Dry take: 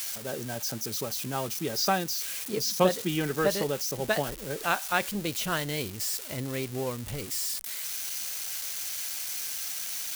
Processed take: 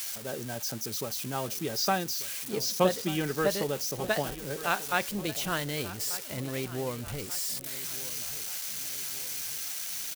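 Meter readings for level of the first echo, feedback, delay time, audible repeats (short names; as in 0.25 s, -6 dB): -16.0 dB, 50%, 1.188 s, 4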